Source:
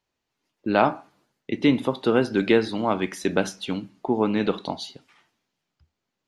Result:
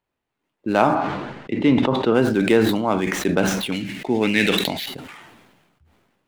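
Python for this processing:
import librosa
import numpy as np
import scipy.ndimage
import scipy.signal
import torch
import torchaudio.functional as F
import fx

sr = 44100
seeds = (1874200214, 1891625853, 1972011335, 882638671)

y = scipy.ndimage.median_filter(x, 9, mode='constant')
y = fx.lowpass(y, sr, hz=3900.0, slope=12, at=(0.94, 2.13), fade=0.02)
y = fx.high_shelf_res(y, sr, hz=1500.0, db=10.0, q=3.0, at=(3.72, 4.86))
y = fx.sustainer(y, sr, db_per_s=39.0)
y = y * librosa.db_to_amplitude(1.5)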